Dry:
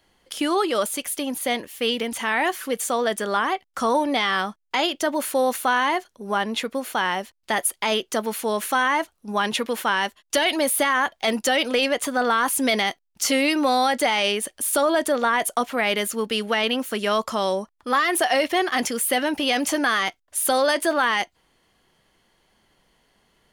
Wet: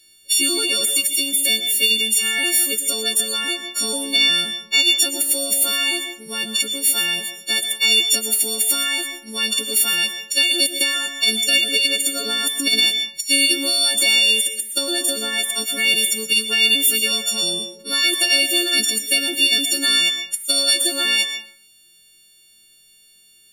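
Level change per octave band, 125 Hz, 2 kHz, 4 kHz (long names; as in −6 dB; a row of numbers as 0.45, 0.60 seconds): can't be measured, +3.5 dB, +11.5 dB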